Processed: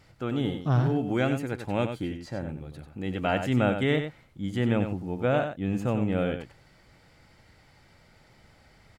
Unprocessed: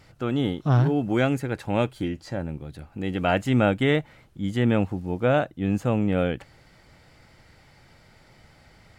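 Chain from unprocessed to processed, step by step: delay 94 ms -8 dB; trim -4 dB

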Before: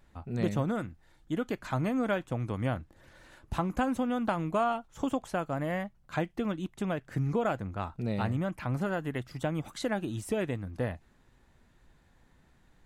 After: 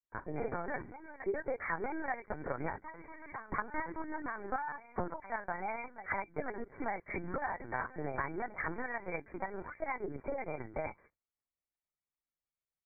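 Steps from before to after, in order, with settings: high-pass 440 Hz 6 dB/octave; reverse echo 902 ms -20 dB; gate -58 dBFS, range -39 dB; compression 8:1, threshold -39 dBFS, peak gain reduction 14 dB; pitch shift +4 st; granulator, spray 26 ms, pitch spread up and down by 0 st; harmonic-percussive split percussive +7 dB; brick-wall FIR low-pass 2.4 kHz; LPC vocoder at 8 kHz pitch kept; trim +3.5 dB

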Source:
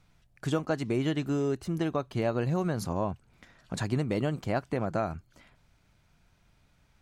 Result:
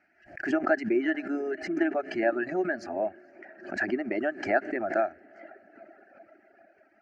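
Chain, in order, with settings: cabinet simulation 310–4100 Hz, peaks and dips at 360 Hz +6 dB, 630 Hz +5 dB, 970 Hz -9 dB, 1.7 kHz +10 dB, 3.6 kHz -6 dB; static phaser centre 720 Hz, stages 8; echo that smears into a reverb 462 ms, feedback 55%, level -15 dB; reverb removal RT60 1.8 s; swell ahead of each attack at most 120 dB/s; trim +4.5 dB

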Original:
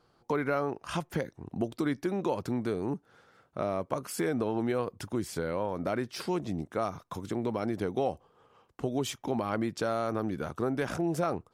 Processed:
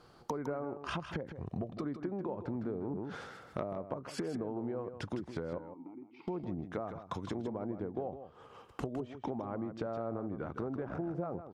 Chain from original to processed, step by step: 1.33–1.84 s: comb 1.7 ms, depth 48%; low-pass that closes with the level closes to 970 Hz, closed at -28 dBFS; compression 6:1, threshold -43 dBFS, peak gain reduction 16.5 dB; 5.58–6.28 s: vowel filter u; delay 158 ms -10 dB; 2.54–3.64 s: decay stretcher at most 34 dB/s; trim +7 dB

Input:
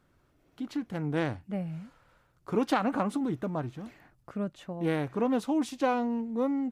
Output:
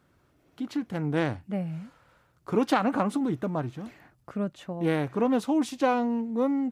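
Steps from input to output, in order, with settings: high-pass 56 Hz; trim +3 dB

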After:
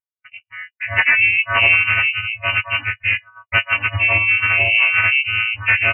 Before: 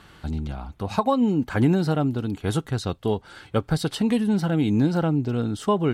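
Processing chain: partials quantised in pitch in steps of 4 st; spectral noise reduction 19 dB; gate -38 dBFS, range -52 dB; dynamic bell 2.1 kHz, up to +4 dB, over -40 dBFS, Q 0.7; Chebyshev shaper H 2 -11 dB, 4 -13 dB, 5 -10 dB, 8 -18 dB, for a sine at 0.5 dBFS; frequency inversion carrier 2.9 kHz; harmony voices -3 st -5 dB; trim -4 dB

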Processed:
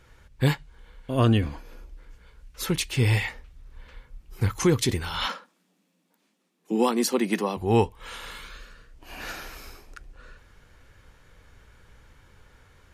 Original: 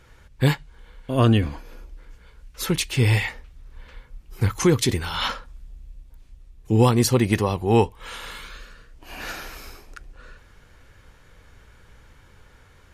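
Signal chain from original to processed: 5.26–7.57 s: Chebyshev high-pass 170 Hz, order 8; trim -3 dB

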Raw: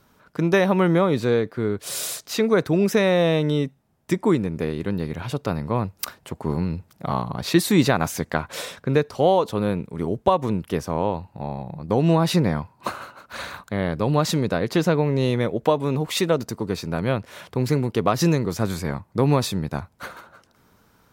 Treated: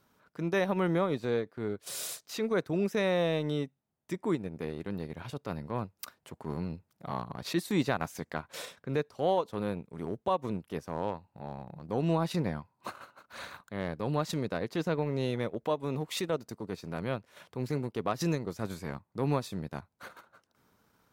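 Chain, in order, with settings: transient shaper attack -5 dB, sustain -9 dB; bass shelf 68 Hz -9 dB; trim -8.5 dB

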